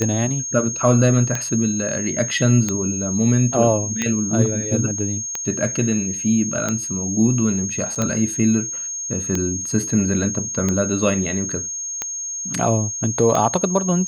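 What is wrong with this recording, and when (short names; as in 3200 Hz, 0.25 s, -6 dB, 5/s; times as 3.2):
tick 45 rpm -8 dBFS
tone 6500 Hz -25 dBFS
7.95–7.96 gap 6.4 ms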